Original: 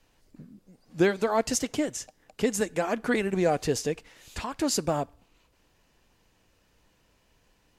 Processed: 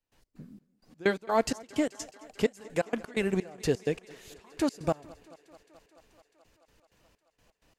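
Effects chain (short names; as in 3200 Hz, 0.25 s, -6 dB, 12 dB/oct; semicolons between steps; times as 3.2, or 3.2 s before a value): step gate ".x.xx..x" 128 bpm -24 dB; on a send: thinning echo 0.216 s, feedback 81%, high-pass 190 Hz, level -22 dB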